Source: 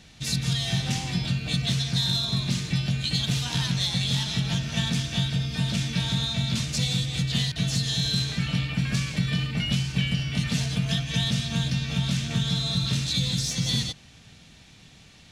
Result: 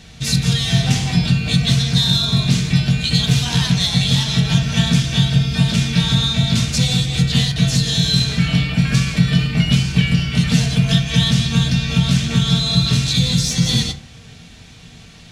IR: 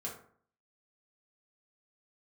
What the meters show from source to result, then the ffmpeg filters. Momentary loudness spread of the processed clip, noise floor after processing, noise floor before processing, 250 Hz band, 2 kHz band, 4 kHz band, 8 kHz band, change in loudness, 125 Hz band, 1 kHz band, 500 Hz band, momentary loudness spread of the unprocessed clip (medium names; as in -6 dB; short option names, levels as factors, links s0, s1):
2 LU, -41 dBFS, -51 dBFS, +11.0 dB, +8.5 dB, +8.5 dB, +8.0 dB, +9.5 dB, +10.5 dB, +8.5 dB, +9.5 dB, 2 LU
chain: -filter_complex "[0:a]asplit=2[s0][s1];[1:a]atrim=start_sample=2205,lowshelf=f=94:g=10.5[s2];[s1][s2]afir=irnorm=-1:irlink=0,volume=0.841[s3];[s0][s3]amix=inputs=2:normalize=0,volume=1.68"